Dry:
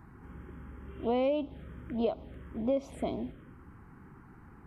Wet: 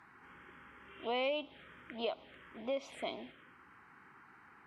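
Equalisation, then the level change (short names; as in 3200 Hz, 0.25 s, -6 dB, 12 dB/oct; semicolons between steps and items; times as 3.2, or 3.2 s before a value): band-pass 2700 Hz, Q 0.95; +7.0 dB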